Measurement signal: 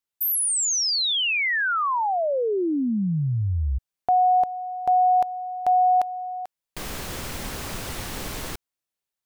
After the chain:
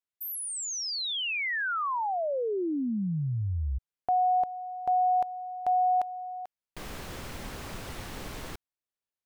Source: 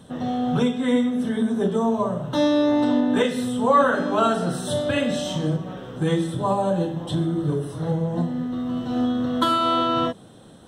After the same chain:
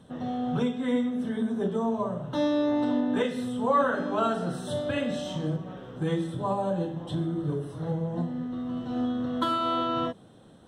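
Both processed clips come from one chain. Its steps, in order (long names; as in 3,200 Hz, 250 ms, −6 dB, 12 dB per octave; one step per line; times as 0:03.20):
high-shelf EQ 4,600 Hz −7 dB
level −6 dB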